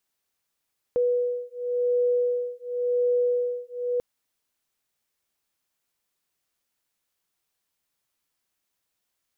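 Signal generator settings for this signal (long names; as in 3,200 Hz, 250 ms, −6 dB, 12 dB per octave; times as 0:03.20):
two tones that beat 489 Hz, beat 0.92 Hz, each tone −25 dBFS 3.04 s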